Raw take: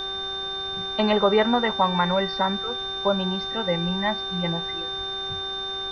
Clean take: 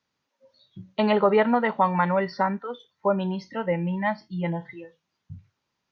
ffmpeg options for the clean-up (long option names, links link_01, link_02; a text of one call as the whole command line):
ffmpeg -i in.wav -filter_complex "[0:a]bandreject=frequency=387.1:width_type=h:width=4,bandreject=frequency=774.2:width_type=h:width=4,bandreject=frequency=1161.3:width_type=h:width=4,bandreject=frequency=1548.4:width_type=h:width=4,bandreject=frequency=3600:width=30,asplit=3[link_01][link_02][link_03];[link_01]afade=type=out:start_time=3.85:duration=0.02[link_04];[link_02]highpass=frequency=140:width=0.5412,highpass=frequency=140:width=1.3066,afade=type=in:start_time=3.85:duration=0.02,afade=type=out:start_time=3.97:duration=0.02[link_05];[link_03]afade=type=in:start_time=3.97:duration=0.02[link_06];[link_04][link_05][link_06]amix=inputs=3:normalize=0,asplit=3[link_07][link_08][link_09];[link_07]afade=type=out:start_time=4.97:duration=0.02[link_10];[link_08]highpass=frequency=140:width=0.5412,highpass=frequency=140:width=1.3066,afade=type=in:start_time=4.97:duration=0.02,afade=type=out:start_time=5.09:duration=0.02[link_11];[link_09]afade=type=in:start_time=5.09:duration=0.02[link_12];[link_10][link_11][link_12]amix=inputs=3:normalize=0,afftdn=noise_reduction=30:noise_floor=-31" out.wav